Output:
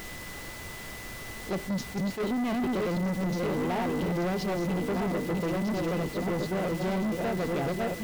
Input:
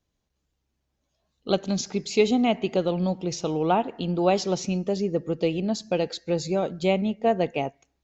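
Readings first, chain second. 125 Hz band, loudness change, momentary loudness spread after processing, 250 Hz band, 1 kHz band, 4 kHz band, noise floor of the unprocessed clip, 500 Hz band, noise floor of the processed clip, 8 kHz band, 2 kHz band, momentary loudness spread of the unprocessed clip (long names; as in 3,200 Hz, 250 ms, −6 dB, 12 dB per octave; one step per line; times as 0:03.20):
−1.0 dB, −5.0 dB, 11 LU, −2.5 dB, −5.5 dB, −7.0 dB, −78 dBFS, −6.5 dB, −41 dBFS, can't be measured, +1.0 dB, 5 LU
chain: feedback delay that plays each chunk backwards 630 ms, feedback 65%, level −4 dB
noise gate −27 dBFS, range −13 dB
low-pass filter 4,000 Hz
low-shelf EQ 460 Hz +8.5 dB
downward compressor, threshold −17 dBFS, peak gain reduction 8 dB
background noise pink −41 dBFS
soft clipping −26.5 dBFS, distortion −7 dB
steady tone 2,000 Hz −44 dBFS
level that may rise only so fast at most 250 dB per second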